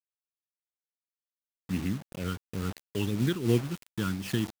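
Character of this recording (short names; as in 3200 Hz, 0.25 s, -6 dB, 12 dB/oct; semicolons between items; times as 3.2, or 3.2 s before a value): phasing stages 12, 2.9 Hz, lowest notch 670–1400 Hz; a quantiser's noise floor 6-bit, dither none; noise-modulated level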